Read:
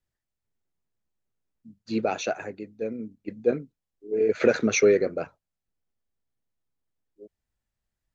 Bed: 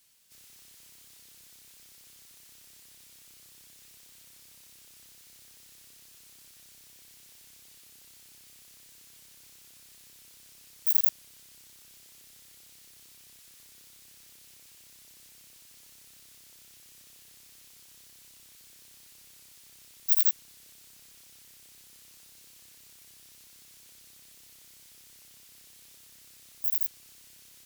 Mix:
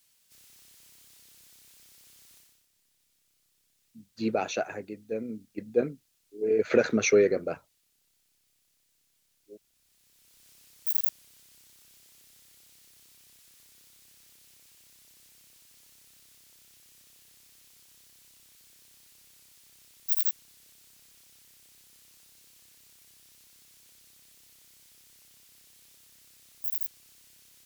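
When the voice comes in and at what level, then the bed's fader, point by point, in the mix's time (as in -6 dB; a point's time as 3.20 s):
2.30 s, -2.0 dB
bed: 2.37 s -2 dB
2.68 s -17.5 dB
9.70 s -17.5 dB
10.49 s -3.5 dB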